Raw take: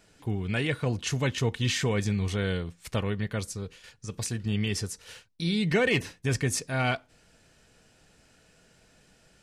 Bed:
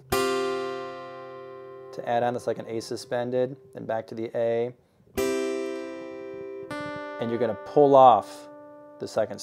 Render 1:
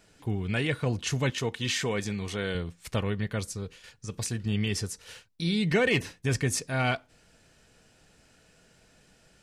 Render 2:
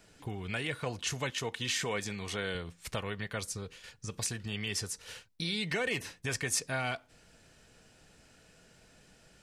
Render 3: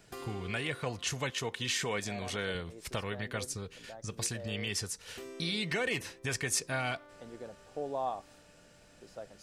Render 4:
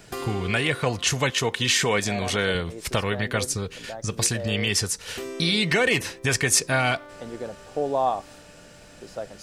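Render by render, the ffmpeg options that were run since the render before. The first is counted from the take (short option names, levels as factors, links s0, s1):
-filter_complex "[0:a]asettb=1/sr,asplit=3[s0][s1][s2];[s0]atrim=end=1.304[s3];[s1]atrim=start=1.3:end=2.55,asetpts=PTS-STARTPTS,afade=t=in:d=0.004:c=qsin,afade=t=out:st=1.246:d=0.004:c=qsin,highpass=f=240:p=1[s4];[s2]atrim=start=2.546[s5];[s3][s4]acrossfade=d=0.004:c1=hsin:c2=qsin[s6];[s6][s5]acrossfade=d=0.004:c1=qsin:c2=hsin"
-filter_complex "[0:a]acrossover=split=530|6400[s0][s1][s2];[s0]acompressor=threshold=0.0126:ratio=6[s3];[s1]alimiter=limit=0.0631:level=0:latency=1:release=164[s4];[s3][s4][s2]amix=inputs=3:normalize=0"
-filter_complex "[1:a]volume=0.1[s0];[0:a][s0]amix=inputs=2:normalize=0"
-af "volume=3.76"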